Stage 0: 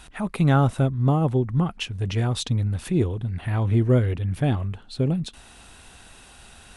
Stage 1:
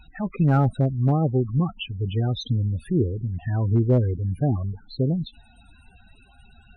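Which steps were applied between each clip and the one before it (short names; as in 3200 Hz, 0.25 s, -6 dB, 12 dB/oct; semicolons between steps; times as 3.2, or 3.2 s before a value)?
loudest bins only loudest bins 16; hard clip -11.5 dBFS, distortion -27 dB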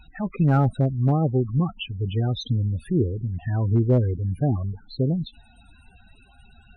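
nothing audible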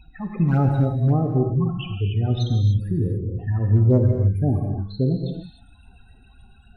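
phaser stages 12, 3.6 Hz, lowest notch 480–3600 Hz; non-linear reverb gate 0.32 s flat, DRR 2.5 dB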